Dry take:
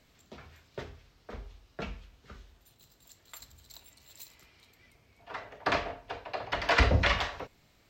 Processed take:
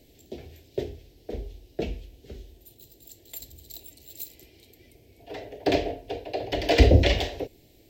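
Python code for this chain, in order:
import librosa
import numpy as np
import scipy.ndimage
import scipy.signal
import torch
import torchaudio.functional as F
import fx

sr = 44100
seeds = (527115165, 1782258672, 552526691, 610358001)

y = fx.curve_eq(x, sr, hz=(110.0, 190.0, 340.0, 760.0, 1200.0, 1800.0, 3100.0, 6600.0, 12000.0), db=(0, -5, 8, -5, -29, -12, -4, -4, 5))
y = y * 10.0 ** (8.5 / 20.0)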